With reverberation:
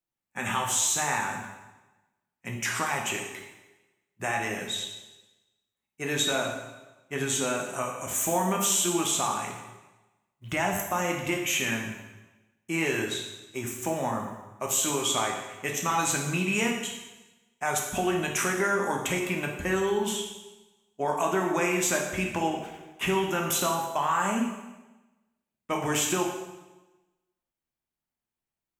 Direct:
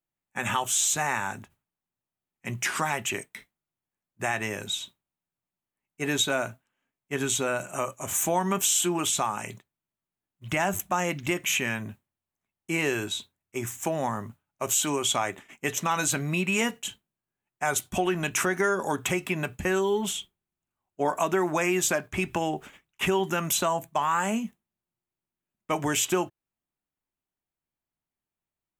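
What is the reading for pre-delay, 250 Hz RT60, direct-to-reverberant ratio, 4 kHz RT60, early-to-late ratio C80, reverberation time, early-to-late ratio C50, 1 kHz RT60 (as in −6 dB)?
5 ms, 1.1 s, 0.5 dB, 1.0 s, 6.5 dB, 1.1 s, 4.5 dB, 1.1 s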